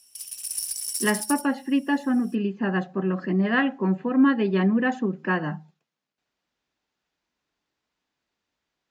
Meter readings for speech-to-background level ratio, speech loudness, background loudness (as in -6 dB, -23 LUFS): 5.0 dB, -24.5 LUFS, -29.5 LUFS